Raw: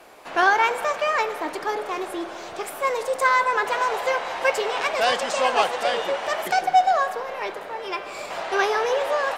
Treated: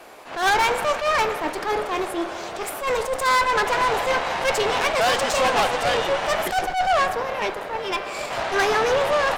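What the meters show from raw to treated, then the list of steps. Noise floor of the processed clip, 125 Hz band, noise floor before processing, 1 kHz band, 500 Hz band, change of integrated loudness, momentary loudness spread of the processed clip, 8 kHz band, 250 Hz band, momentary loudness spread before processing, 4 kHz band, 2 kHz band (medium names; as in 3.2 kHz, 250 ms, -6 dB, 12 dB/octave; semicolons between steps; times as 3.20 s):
-33 dBFS, no reading, -37 dBFS, +0.5 dB, +2.0 dB, +1.0 dB, 8 LU, +5.0 dB, +4.0 dB, 12 LU, +4.0 dB, +1.0 dB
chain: valve stage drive 24 dB, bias 0.75; attacks held to a fixed rise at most 120 dB/s; trim +8.5 dB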